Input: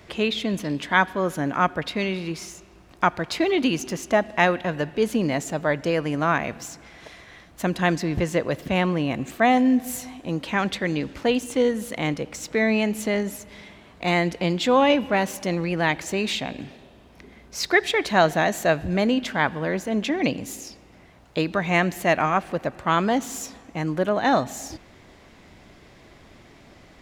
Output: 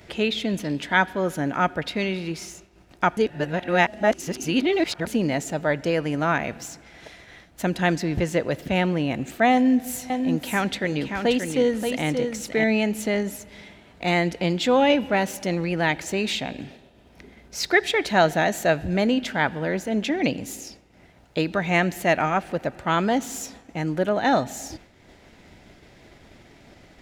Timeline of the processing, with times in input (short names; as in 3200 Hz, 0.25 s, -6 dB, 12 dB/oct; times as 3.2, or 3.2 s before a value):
3.17–5.07 reverse
9.52–12.64 echo 0.579 s -6 dB
whole clip: expander -42 dBFS; notch 1100 Hz, Q 6.2; upward compressor, threshold -40 dBFS